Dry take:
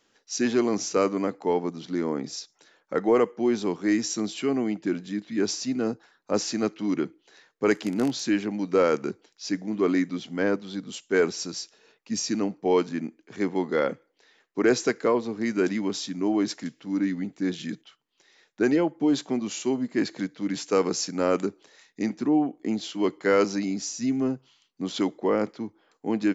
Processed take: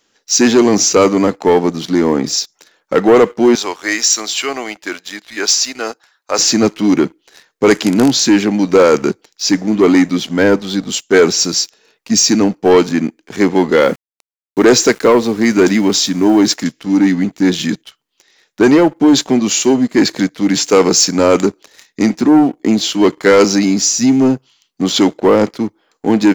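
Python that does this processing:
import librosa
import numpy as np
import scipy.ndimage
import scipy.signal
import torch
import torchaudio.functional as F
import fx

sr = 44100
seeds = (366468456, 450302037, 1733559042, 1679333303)

y = fx.highpass(x, sr, hz=780.0, slope=12, at=(3.55, 6.39))
y = fx.sample_gate(y, sr, floor_db=-48.0, at=(13.79, 16.54))
y = fx.high_shelf(y, sr, hz=3600.0, db=6.0)
y = fx.leveller(y, sr, passes=2)
y = F.gain(torch.from_numpy(y), 8.0).numpy()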